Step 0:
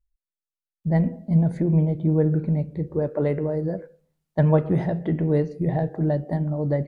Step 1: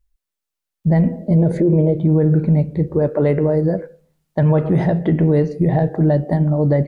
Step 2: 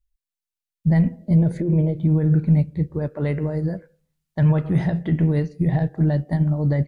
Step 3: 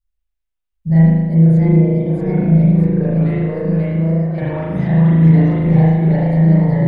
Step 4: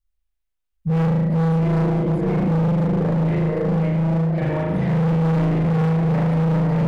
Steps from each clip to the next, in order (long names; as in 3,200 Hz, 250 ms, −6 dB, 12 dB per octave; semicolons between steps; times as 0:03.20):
gain on a spectral selection 0:01.19–0:01.98, 320–640 Hz +10 dB; brickwall limiter −17 dBFS, peak gain reduction 10 dB; level +9 dB
parametric band 490 Hz −11.5 dB 2.4 octaves; expander for the loud parts 1.5 to 1, over −35 dBFS; level +3 dB
delay with pitch and tempo change per echo 721 ms, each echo +1 semitone, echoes 2; spring reverb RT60 1.3 s, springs 37 ms, chirp 80 ms, DRR −8.5 dB; level −5 dB
hard clipping −17 dBFS, distortion −6 dB